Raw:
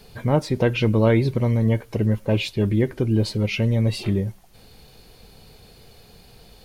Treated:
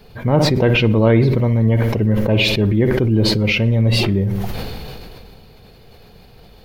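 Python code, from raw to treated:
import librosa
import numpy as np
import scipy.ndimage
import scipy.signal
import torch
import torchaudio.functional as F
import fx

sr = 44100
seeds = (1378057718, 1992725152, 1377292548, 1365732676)

y = fx.peak_eq(x, sr, hz=8600.0, db=-13.0, octaves=1.5)
y = fx.echo_feedback(y, sr, ms=61, feedback_pct=47, wet_db=-16)
y = fx.sustainer(y, sr, db_per_s=22.0)
y = F.gain(torch.from_numpy(y), 3.5).numpy()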